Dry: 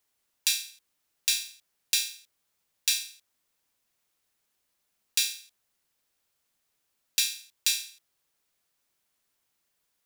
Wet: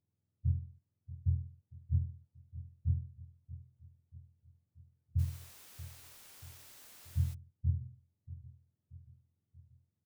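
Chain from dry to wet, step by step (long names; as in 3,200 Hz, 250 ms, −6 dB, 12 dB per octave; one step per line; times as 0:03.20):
frequency axis turned over on the octave scale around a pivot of 570 Hz
repeating echo 633 ms, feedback 52%, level −16 dB
0:05.18–0:07.33: background noise white −50 dBFS
level −6 dB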